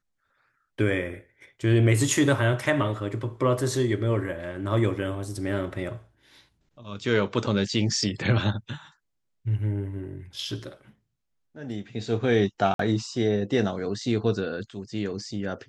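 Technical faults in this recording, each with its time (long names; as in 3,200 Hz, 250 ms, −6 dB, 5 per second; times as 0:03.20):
0:12.74–0:12.79: drop-out 53 ms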